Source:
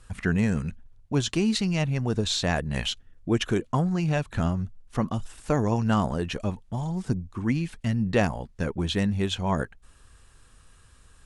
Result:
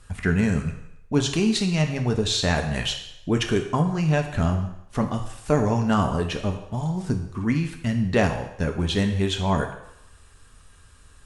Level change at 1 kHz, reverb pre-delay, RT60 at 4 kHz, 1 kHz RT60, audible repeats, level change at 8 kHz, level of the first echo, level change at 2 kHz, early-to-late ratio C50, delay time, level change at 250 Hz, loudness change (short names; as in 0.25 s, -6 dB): +3.5 dB, 4 ms, 0.75 s, 0.85 s, none, +3.5 dB, none, +3.5 dB, 8.5 dB, none, +2.5 dB, +3.0 dB